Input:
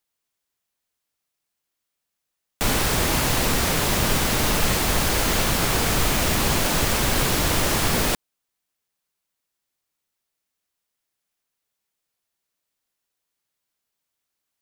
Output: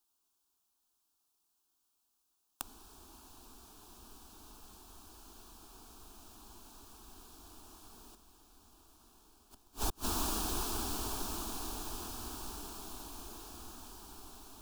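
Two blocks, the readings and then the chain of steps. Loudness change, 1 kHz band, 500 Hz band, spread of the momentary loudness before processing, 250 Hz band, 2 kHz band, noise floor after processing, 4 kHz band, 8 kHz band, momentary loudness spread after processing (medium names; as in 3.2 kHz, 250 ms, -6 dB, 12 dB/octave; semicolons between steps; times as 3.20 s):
-19.0 dB, -18.0 dB, -22.0 dB, 1 LU, -19.0 dB, -27.5 dB, -80 dBFS, -20.5 dB, -17.5 dB, 20 LU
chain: on a send: echo that smears into a reverb 1293 ms, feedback 49%, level -8 dB; on the sum: inverted gate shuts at -21 dBFS, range -35 dB; static phaser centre 540 Hz, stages 6; trim +2.5 dB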